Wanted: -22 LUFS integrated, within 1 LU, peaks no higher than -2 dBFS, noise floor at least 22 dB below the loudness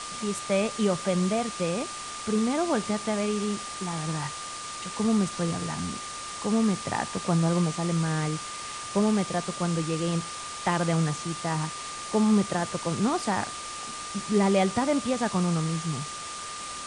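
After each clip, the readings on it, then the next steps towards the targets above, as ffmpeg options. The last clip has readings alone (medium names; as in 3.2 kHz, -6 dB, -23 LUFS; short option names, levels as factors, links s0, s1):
steady tone 1.2 kHz; tone level -38 dBFS; noise floor -37 dBFS; noise floor target -50 dBFS; loudness -28.0 LUFS; peak level -12.0 dBFS; loudness target -22.0 LUFS
-> -af "bandreject=f=1200:w=30"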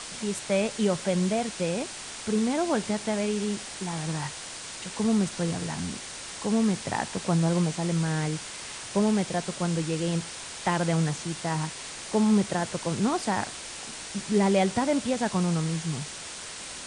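steady tone not found; noise floor -40 dBFS; noise floor target -50 dBFS
-> -af "afftdn=nr=10:nf=-40"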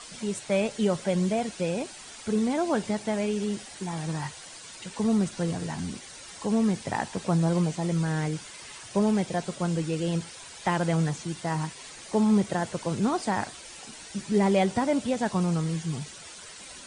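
noise floor -45 dBFS; noise floor target -50 dBFS
-> -af "afftdn=nr=6:nf=-45"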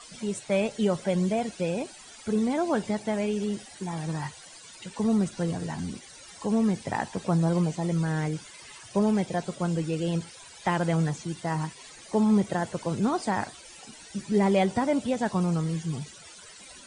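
noise floor -48 dBFS; noise floor target -50 dBFS
-> -af "afftdn=nr=6:nf=-48"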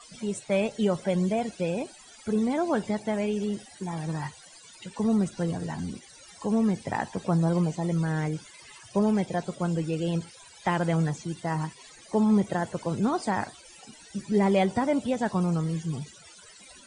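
noise floor -51 dBFS; loudness -28.0 LUFS; peak level -12.5 dBFS; loudness target -22.0 LUFS
-> -af "volume=2"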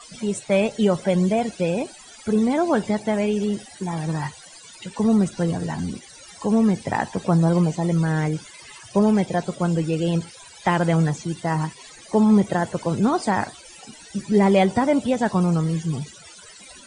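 loudness -22.0 LUFS; peak level -6.5 dBFS; noise floor -45 dBFS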